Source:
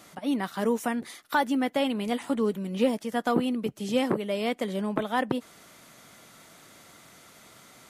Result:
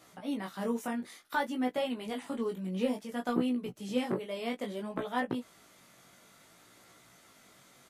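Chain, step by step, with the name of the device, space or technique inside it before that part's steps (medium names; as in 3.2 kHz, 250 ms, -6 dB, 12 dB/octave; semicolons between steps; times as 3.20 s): double-tracked vocal (doubling 16 ms -9 dB; chorus 0.58 Hz, delay 16 ms, depth 5.9 ms); trim -4.5 dB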